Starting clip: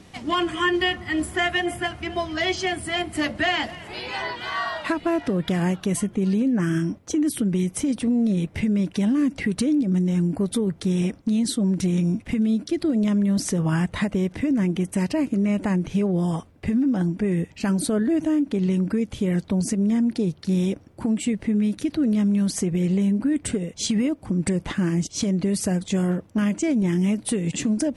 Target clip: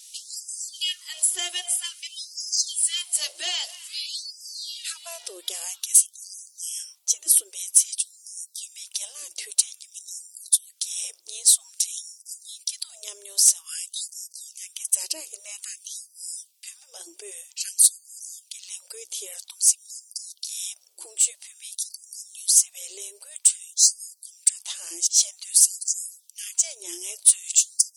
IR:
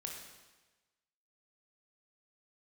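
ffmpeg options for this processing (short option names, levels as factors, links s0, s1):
-af "bass=f=250:g=2,treble=f=4000:g=14,aexciter=amount=6.9:drive=4.6:freq=2700,afftfilt=real='re*gte(b*sr/1024,330*pow(4800/330,0.5+0.5*sin(2*PI*0.51*pts/sr)))':imag='im*gte(b*sr/1024,330*pow(4800/330,0.5+0.5*sin(2*PI*0.51*pts/sr)))':win_size=1024:overlap=0.75,volume=0.158"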